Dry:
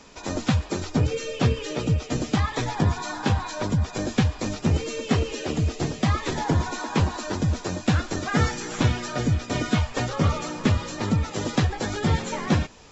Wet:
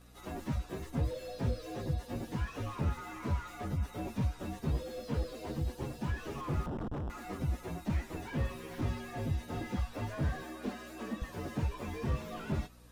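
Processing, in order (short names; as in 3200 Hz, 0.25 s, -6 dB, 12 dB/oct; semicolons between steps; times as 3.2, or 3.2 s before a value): inharmonic rescaling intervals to 119%; 6.66–7.1 Schmitt trigger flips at -30.5 dBFS; 10.43–11.22 elliptic high-pass 210 Hz; hum 60 Hz, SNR 23 dB; slew limiter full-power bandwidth 28 Hz; gain -8 dB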